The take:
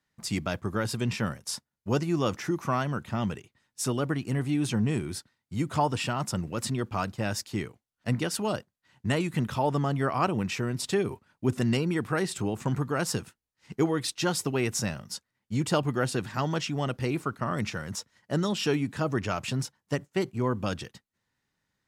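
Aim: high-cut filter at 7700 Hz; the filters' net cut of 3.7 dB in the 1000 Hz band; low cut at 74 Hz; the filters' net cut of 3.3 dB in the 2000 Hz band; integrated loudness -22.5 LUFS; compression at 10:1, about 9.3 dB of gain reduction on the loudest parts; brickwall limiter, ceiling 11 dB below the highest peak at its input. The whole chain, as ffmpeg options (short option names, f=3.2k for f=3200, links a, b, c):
-af "highpass=74,lowpass=7.7k,equalizer=f=1k:t=o:g=-4,equalizer=f=2k:t=o:g=-3,acompressor=threshold=-31dB:ratio=10,volume=17.5dB,alimiter=limit=-12dB:level=0:latency=1"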